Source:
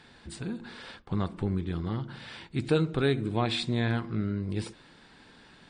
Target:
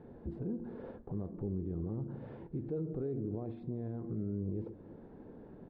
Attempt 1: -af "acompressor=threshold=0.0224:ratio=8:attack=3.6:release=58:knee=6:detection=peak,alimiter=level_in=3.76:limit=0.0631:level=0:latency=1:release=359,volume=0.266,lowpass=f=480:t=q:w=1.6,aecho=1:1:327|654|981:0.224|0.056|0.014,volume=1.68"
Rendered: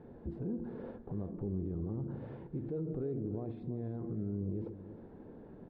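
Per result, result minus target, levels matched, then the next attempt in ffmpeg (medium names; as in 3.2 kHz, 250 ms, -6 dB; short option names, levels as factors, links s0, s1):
compression: peak gain reduction +7.5 dB; echo-to-direct +7 dB
-af "acompressor=threshold=0.0596:ratio=8:attack=3.6:release=58:knee=6:detection=peak,alimiter=level_in=3.76:limit=0.0631:level=0:latency=1:release=359,volume=0.266,lowpass=f=480:t=q:w=1.6,aecho=1:1:327|654|981:0.224|0.056|0.014,volume=1.68"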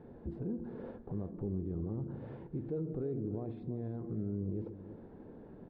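echo-to-direct +7 dB
-af "acompressor=threshold=0.0596:ratio=8:attack=3.6:release=58:knee=6:detection=peak,alimiter=level_in=3.76:limit=0.0631:level=0:latency=1:release=359,volume=0.266,lowpass=f=480:t=q:w=1.6,aecho=1:1:327|654:0.1|0.025,volume=1.68"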